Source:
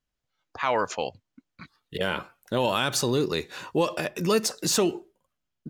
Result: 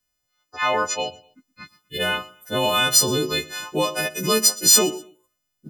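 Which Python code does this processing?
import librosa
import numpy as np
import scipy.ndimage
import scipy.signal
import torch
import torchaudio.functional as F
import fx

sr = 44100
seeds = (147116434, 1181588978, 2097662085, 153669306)

y = fx.freq_snap(x, sr, grid_st=3)
y = fx.echo_feedback(y, sr, ms=122, feedback_pct=30, wet_db=-21)
y = y * librosa.db_to_amplitude(1.5)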